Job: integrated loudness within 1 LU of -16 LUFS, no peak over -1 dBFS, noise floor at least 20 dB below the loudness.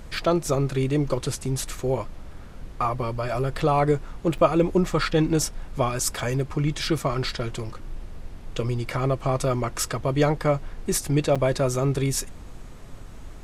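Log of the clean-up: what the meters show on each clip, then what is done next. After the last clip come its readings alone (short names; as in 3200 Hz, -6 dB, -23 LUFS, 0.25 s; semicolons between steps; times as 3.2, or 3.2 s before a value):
dropouts 2; longest dropout 5.8 ms; noise floor -40 dBFS; noise floor target -45 dBFS; loudness -25.0 LUFS; peak -5.5 dBFS; loudness target -16.0 LUFS
-> interpolate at 4.38/11.35, 5.8 ms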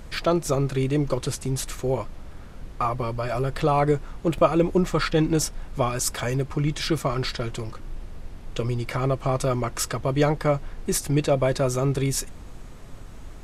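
dropouts 0; noise floor -40 dBFS; noise floor target -45 dBFS
-> noise print and reduce 6 dB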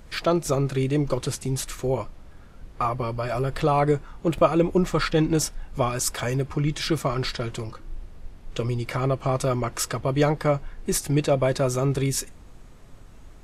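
noise floor -46 dBFS; loudness -25.0 LUFS; peak -5.5 dBFS; loudness target -16.0 LUFS
-> gain +9 dB; limiter -1 dBFS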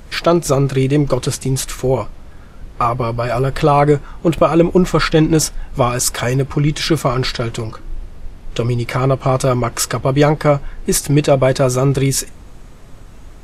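loudness -16.0 LUFS; peak -1.0 dBFS; noise floor -37 dBFS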